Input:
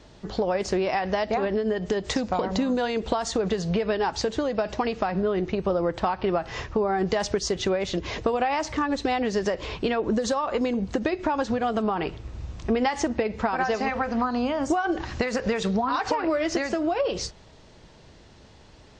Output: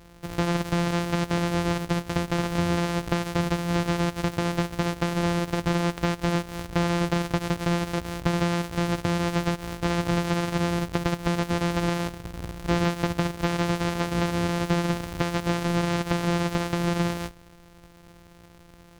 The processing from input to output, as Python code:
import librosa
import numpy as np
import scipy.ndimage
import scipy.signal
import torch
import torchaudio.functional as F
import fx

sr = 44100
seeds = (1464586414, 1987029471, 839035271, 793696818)

y = np.r_[np.sort(x[:len(x) // 256 * 256].reshape(-1, 256), axis=1).ravel(), x[len(x) // 256 * 256:]]
y = fx.slew_limit(y, sr, full_power_hz=600.0)